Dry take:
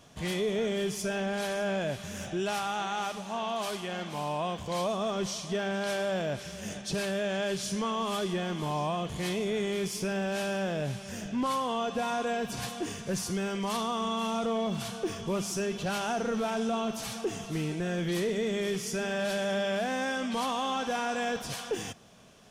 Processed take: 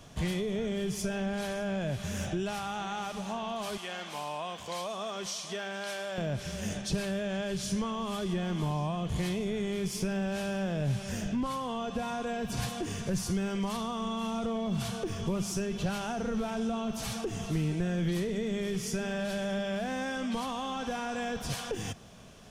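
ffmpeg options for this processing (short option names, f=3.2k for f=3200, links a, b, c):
-filter_complex "[0:a]asettb=1/sr,asplit=3[a][b][c];[a]atrim=end=3.774[d];[b]atrim=start=3.77:end=6.18,asetpts=PTS-STARTPTS,afade=t=in:d=0.004:c=qsin,afade=t=out:st=2.406:d=0.004:c=qsin,highpass=f=910:p=1[e];[c]atrim=start=6.176[f];[d][e]acrossfade=d=0.004:c1=hsin:c2=qsin[g];[g][f]acrossfade=d=0.004:c1=qsin:c2=hsin,lowshelf=f=100:g=11,acrossover=split=180[h][i];[i]acompressor=threshold=-36dB:ratio=4[j];[h][j]amix=inputs=2:normalize=0,volume=2.5dB"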